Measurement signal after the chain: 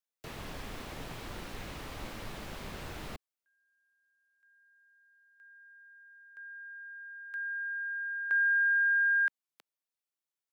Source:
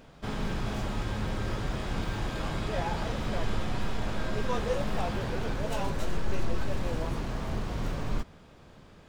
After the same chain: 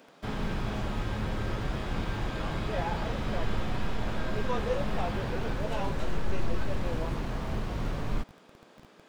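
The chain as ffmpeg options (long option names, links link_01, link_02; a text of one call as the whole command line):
ffmpeg -i in.wav -filter_complex "[0:a]acrossover=split=200|920|2600[link_01][link_02][link_03][link_04];[link_01]acrusher=bits=7:mix=0:aa=0.000001[link_05];[link_05][link_02][link_03][link_04]amix=inputs=4:normalize=0,acrossover=split=4300[link_06][link_07];[link_07]acompressor=threshold=-55dB:ratio=4:attack=1:release=60[link_08];[link_06][link_08]amix=inputs=2:normalize=0" out.wav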